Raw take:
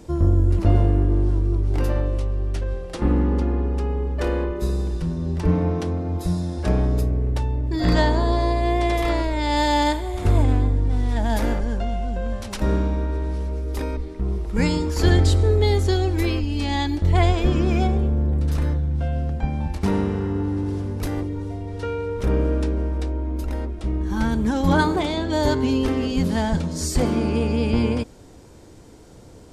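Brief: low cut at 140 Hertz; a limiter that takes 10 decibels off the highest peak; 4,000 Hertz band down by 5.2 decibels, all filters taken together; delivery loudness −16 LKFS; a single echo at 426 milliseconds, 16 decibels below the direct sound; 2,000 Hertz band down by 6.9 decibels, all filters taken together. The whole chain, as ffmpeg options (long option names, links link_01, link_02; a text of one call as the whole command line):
ffmpeg -i in.wav -af "highpass=140,equalizer=frequency=2000:width_type=o:gain=-8,equalizer=frequency=4000:width_type=o:gain=-4,alimiter=limit=-17.5dB:level=0:latency=1,aecho=1:1:426:0.158,volume=12dB" out.wav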